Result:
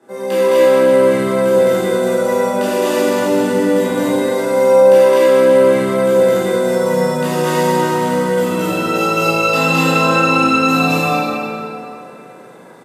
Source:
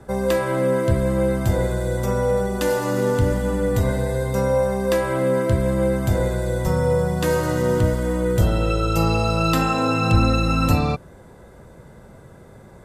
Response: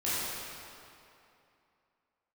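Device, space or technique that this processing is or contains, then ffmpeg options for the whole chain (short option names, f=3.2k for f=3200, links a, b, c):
stadium PA: -filter_complex "[0:a]highpass=f=220:w=0.5412,highpass=f=220:w=1.3066,equalizer=f=2.8k:t=o:w=0.63:g=3.5,aecho=1:1:212.8|256.6:1|0.794[a];[1:a]atrim=start_sample=2205[b];[a][b]afir=irnorm=-1:irlink=0,volume=-5dB"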